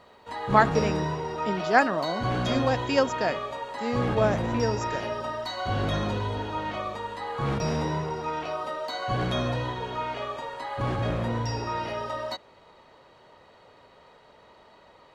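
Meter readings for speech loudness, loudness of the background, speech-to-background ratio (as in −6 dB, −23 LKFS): −26.5 LKFS, −30.0 LKFS, 3.5 dB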